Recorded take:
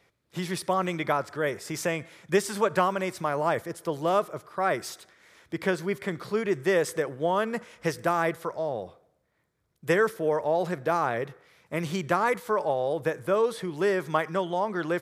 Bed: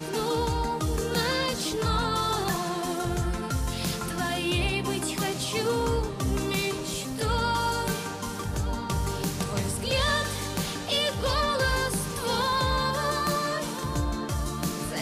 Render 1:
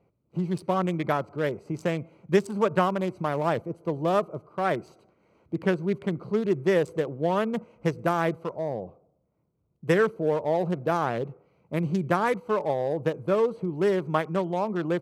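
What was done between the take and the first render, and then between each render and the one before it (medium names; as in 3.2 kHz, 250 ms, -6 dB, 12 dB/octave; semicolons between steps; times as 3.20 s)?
local Wiener filter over 25 samples; peaking EQ 180 Hz +5.5 dB 1.7 oct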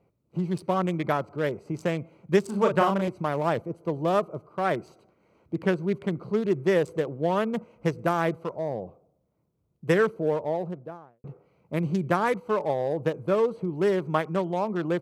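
2.42–3.08 s: doubling 36 ms -4 dB; 10.13–11.24 s: studio fade out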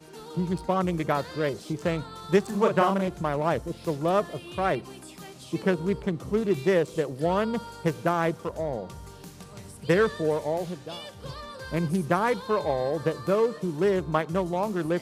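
add bed -15 dB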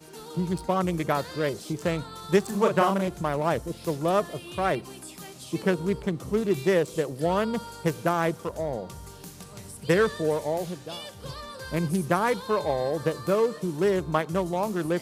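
treble shelf 6.5 kHz +8 dB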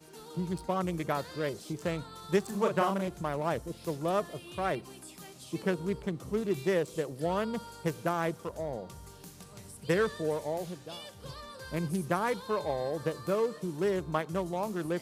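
trim -6 dB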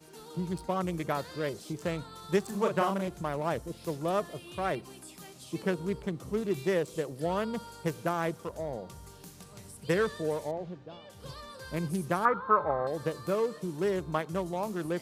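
10.51–11.10 s: tape spacing loss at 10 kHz 31 dB; 12.25–12.87 s: resonant low-pass 1.3 kHz, resonance Q 12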